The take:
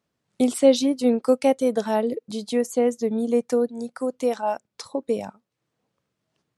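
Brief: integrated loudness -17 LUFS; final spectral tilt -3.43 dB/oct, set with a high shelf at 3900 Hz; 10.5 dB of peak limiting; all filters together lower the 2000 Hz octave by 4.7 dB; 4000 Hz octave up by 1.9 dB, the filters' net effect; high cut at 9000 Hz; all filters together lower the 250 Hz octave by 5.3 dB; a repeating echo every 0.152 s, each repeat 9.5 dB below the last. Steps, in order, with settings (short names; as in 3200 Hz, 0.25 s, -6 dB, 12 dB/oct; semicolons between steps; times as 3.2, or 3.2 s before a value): LPF 9000 Hz; bell 250 Hz -5.5 dB; bell 2000 Hz -6.5 dB; high shelf 3900 Hz -6 dB; bell 4000 Hz +7.5 dB; limiter -17.5 dBFS; feedback echo 0.152 s, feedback 33%, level -9.5 dB; gain +11.5 dB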